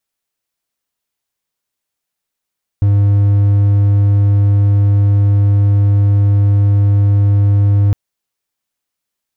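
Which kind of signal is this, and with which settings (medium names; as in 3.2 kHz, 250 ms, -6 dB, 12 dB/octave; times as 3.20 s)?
tone triangle 101 Hz -5.5 dBFS 5.11 s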